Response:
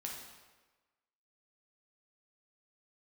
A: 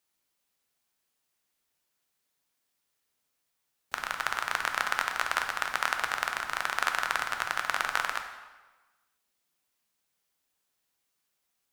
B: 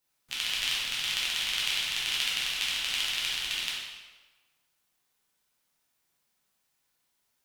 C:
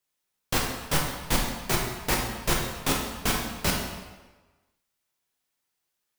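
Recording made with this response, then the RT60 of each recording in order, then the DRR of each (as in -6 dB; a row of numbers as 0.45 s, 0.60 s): C; 1.3 s, 1.3 s, 1.3 s; 4.5 dB, -7.0 dB, -1.5 dB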